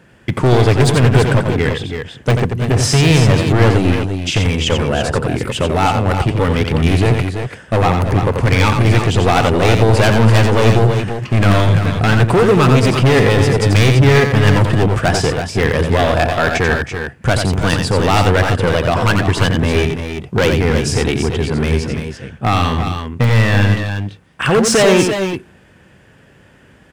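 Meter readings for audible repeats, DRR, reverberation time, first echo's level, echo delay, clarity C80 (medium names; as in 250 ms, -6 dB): 2, no reverb, no reverb, -6.0 dB, 88 ms, no reverb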